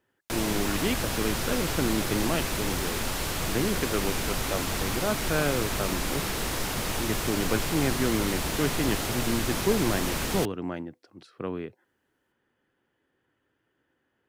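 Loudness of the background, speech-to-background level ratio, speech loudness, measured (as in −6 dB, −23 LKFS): −29.5 LKFS, −1.5 dB, −31.0 LKFS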